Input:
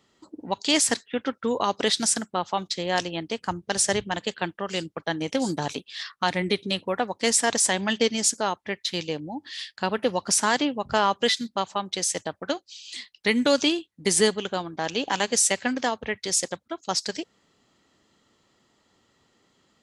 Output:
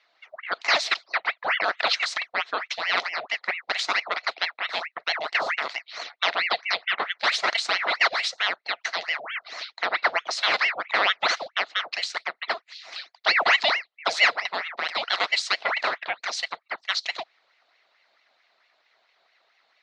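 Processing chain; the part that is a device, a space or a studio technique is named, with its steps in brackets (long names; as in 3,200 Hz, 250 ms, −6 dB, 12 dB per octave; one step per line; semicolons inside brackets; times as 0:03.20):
voice changer toy (ring modulator whose carrier an LFO sweeps 1,400 Hz, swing 80%, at 4.5 Hz; loudspeaker in its box 520–4,900 Hz, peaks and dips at 680 Hz +8 dB, 1,300 Hz +4 dB, 2,000 Hz +7 dB, 4,100 Hz +9 dB)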